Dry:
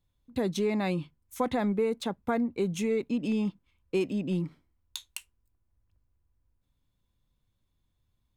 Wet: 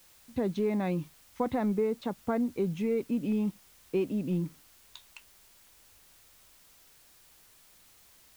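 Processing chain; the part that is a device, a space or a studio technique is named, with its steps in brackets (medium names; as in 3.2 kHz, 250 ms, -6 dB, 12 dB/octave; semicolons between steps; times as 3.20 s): cassette deck with a dirty head (tape spacing loss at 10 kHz 27 dB; wow and flutter; white noise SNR 26 dB)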